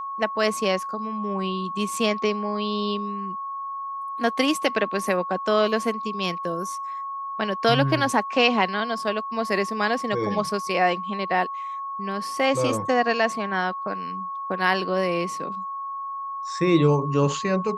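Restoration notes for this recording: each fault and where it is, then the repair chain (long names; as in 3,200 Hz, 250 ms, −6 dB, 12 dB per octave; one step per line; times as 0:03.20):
whistle 1,100 Hz −29 dBFS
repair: notch filter 1,100 Hz, Q 30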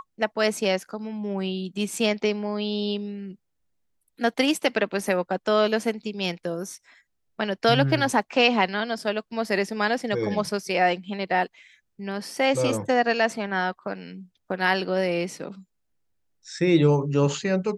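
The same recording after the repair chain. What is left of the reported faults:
none of them is left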